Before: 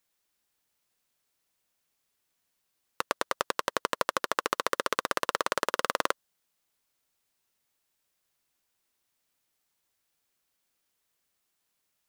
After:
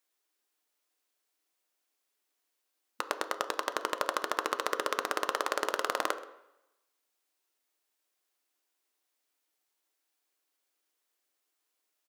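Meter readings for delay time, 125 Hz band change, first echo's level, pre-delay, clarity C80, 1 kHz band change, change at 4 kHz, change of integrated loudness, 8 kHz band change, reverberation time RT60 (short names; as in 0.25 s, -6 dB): 0.13 s, under -25 dB, -20.0 dB, 3 ms, 14.0 dB, -2.0 dB, -3.0 dB, -2.5 dB, -3.0 dB, 0.85 s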